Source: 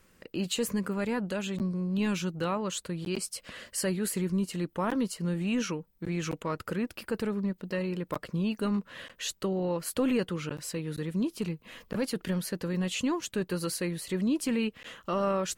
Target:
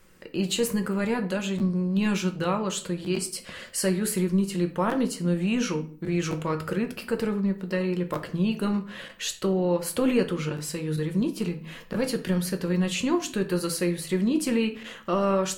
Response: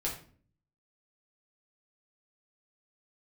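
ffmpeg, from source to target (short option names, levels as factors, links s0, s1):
-filter_complex "[0:a]asplit=2[s0][s1];[1:a]atrim=start_sample=2205,lowshelf=f=160:g=-4.5[s2];[s1][s2]afir=irnorm=-1:irlink=0,volume=0.596[s3];[s0][s3]amix=inputs=2:normalize=0"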